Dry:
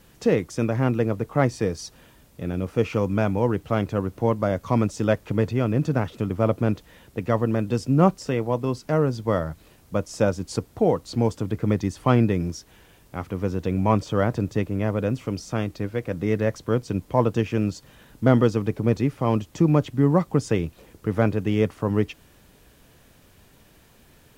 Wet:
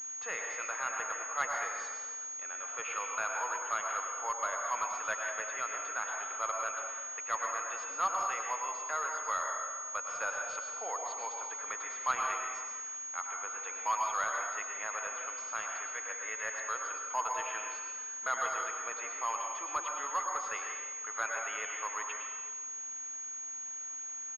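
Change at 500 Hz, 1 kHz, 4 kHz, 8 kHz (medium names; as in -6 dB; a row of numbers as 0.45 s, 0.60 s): -21.0 dB, -3.0 dB, -8.5 dB, +12.0 dB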